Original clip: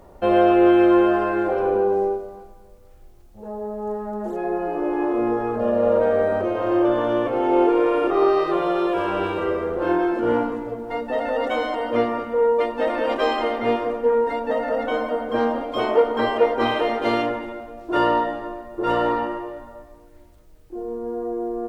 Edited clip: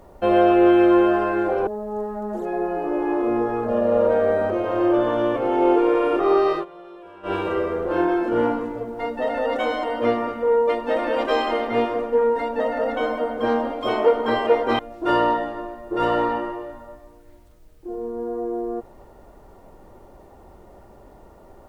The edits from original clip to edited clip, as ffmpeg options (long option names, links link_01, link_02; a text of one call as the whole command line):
ffmpeg -i in.wav -filter_complex "[0:a]asplit=5[link_01][link_02][link_03][link_04][link_05];[link_01]atrim=end=1.672[link_06];[link_02]atrim=start=3.578:end=8.56,asetpts=PTS-STARTPTS,afade=type=out:start_time=4.862:duration=0.12:curve=qsin:silence=0.0944061[link_07];[link_03]atrim=start=8.56:end=9.14,asetpts=PTS-STARTPTS,volume=-20.5dB[link_08];[link_04]atrim=start=9.14:end=16.702,asetpts=PTS-STARTPTS,afade=type=in:duration=0.12:curve=qsin:silence=0.0944061[link_09];[link_05]atrim=start=17.658[link_10];[link_07][link_08][link_09]concat=n=3:v=0:a=1[link_11];[link_06][link_11]acrossfade=duration=0.004:curve1=hsin:curve2=hsin[link_12];[link_12][link_10]acrossfade=duration=0.004:curve1=hsin:curve2=hsin" out.wav